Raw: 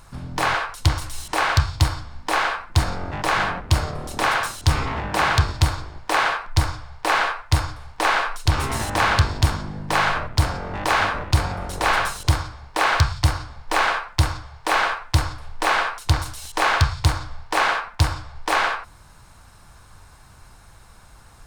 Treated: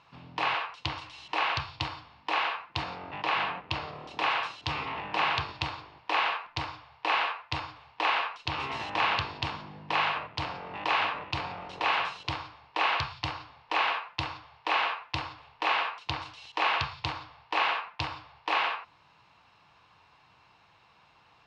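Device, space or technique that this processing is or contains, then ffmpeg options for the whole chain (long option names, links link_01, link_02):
kitchen radio: -filter_complex "[0:a]asettb=1/sr,asplit=3[link_01][link_02][link_03];[link_01]atrim=end=2.994[link_04];[link_02]atrim=start=2.99:end=3.92,asetpts=PTS-STARTPTS,afade=type=in:duration=0.004:curve=qsin,afade=type=out:start_time=0.926:duration=0.004:curve=qsin,lowpass=6300[link_05];[link_03]atrim=start=3.916[link_06];[link_04][link_05]acrossfade=duration=0.004:curve1=hsin:curve2=qsin[link_07];[link_07][link_06]acrossfade=duration=0.004:curve1=qsin:curve2=hsin,highpass=200,equalizer=frequency=230:width_type=q:width=4:gain=-8,equalizer=frequency=370:width_type=q:width=4:gain=-4,equalizer=frequency=580:width_type=q:width=4:gain=-4,equalizer=frequency=980:width_type=q:width=4:gain=3,equalizer=frequency=1500:width_type=q:width=4:gain=-6,equalizer=frequency=2700:width_type=q:width=4:gain=9,lowpass=frequency=4400:width=0.5412,lowpass=frequency=4400:width=1.3066,volume=-7.5dB"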